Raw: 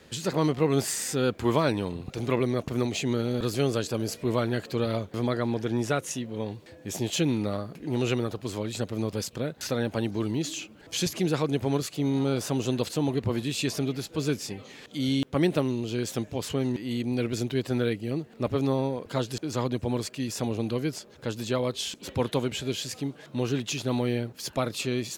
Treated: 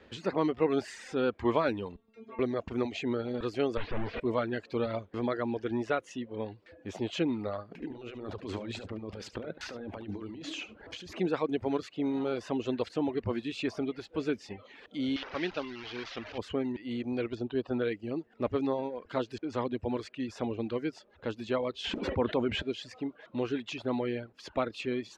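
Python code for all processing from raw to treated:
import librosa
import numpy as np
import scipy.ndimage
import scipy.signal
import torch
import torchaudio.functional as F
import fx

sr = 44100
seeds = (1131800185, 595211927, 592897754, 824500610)

y = fx.chain(x, sr, fx.high_shelf(hz=6200.0, db=-9.0),
    fx.stiff_resonator(f0_hz=220.0, decay_s=0.4, stiffness=0.002),
    fx.band_squash(depth_pct=40), at=(1.96, 2.39))
y = fx.chain(y, sr, fx.clip_1bit(),
    fx.lowpass(hz=3600.0, slope=24),
    fx.low_shelf(hz=76.0, db=12.0), at=(3.77, 4.2))
y = fx.chain(y, sr, fx.over_compress(threshold_db=-35.0, ratio=-1.0),
    fx.echo_single(ms=72, db=-7.5), at=(7.71, 11.15))
y = fx.chain(y, sr, fx.delta_mod(bps=32000, step_db=-28.5),
    fx.lowpass(hz=3600.0, slope=6),
    fx.tilt_shelf(db=-8.5, hz=1500.0), at=(15.16, 16.38))
y = fx.chain(y, sr, fx.lowpass(hz=3900.0, slope=12),
    fx.peak_eq(hz=2100.0, db=-14.0, octaves=0.33), at=(17.35, 17.82))
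y = fx.chain(y, sr, fx.high_shelf(hz=3400.0, db=-11.5),
    fx.env_flatten(amount_pct=70), at=(21.84, 22.62))
y = fx.dereverb_blind(y, sr, rt60_s=0.73)
y = scipy.signal.sosfilt(scipy.signal.butter(2, 2700.0, 'lowpass', fs=sr, output='sos'), y)
y = fx.peak_eq(y, sr, hz=140.0, db=-13.5, octaves=0.51)
y = y * librosa.db_to_amplitude(-1.5)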